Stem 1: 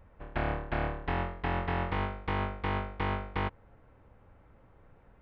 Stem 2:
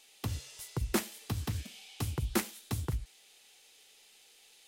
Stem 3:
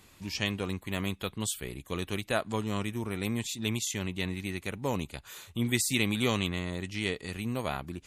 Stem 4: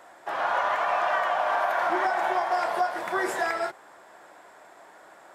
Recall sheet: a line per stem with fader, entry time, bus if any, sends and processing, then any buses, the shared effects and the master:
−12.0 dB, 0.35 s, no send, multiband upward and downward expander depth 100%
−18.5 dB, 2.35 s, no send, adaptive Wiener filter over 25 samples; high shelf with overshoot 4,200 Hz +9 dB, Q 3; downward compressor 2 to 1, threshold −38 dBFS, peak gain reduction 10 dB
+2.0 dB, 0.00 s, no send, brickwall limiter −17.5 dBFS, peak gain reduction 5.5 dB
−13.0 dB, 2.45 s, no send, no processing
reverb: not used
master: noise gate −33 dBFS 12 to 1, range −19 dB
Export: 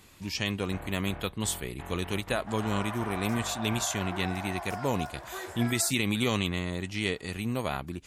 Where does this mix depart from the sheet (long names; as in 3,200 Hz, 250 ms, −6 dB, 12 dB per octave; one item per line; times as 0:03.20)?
stem 4: entry 2.45 s → 2.20 s
master: missing noise gate −33 dBFS 12 to 1, range −19 dB